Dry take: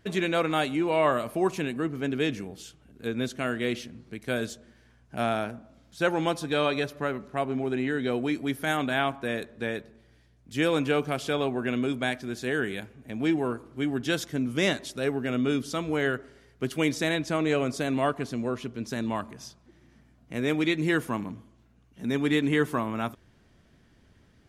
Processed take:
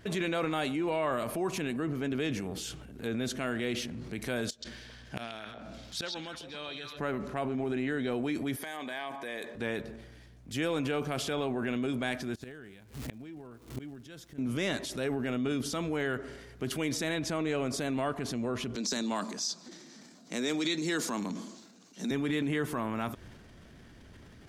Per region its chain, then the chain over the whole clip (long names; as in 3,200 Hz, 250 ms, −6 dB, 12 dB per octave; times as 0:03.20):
0:04.49–0:06.99: parametric band 4,000 Hz +10 dB 2 octaves + gate with flip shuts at −25 dBFS, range −25 dB + echo through a band-pass that steps 134 ms, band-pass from 3,900 Hz, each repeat −1.4 octaves, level −3.5 dB
0:08.56–0:09.55: high-pass filter 600 Hz 6 dB per octave + downward compressor 3 to 1, threshold −42 dBFS + notch comb filter 1,400 Hz
0:12.34–0:14.38: low-shelf EQ 130 Hz +10.5 dB + surface crackle 570 per second −41 dBFS + gate with flip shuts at −24 dBFS, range −29 dB
0:18.75–0:22.11: Butterworth high-pass 170 Hz 48 dB per octave + flat-topped bell 5,500 Hz +14 dB 1.3 octaves
whole clip: downward compressor 3 to 1, threshold −39 dBFS; transient designer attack −4 dB, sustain +7 dB; level +6.5 dB